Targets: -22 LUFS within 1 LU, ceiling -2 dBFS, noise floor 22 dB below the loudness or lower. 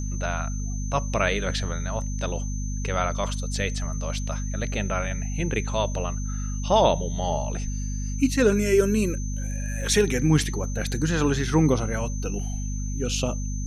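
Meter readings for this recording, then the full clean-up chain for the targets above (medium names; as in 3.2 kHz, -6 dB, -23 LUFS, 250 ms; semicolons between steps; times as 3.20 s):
hum 50 Hz; highest harmonic 250 Hz; hum level -26 dBFS; steady tone 6.2 kHz; tone level -39 dBFS; loudness -26.0 LUFS; peak level -6.5 dBFS; loudness target -22.0 LUFS
-> de-hum 50 Hz, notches 5; band-stop 6.2 kHz, Q 30; trim +4 dB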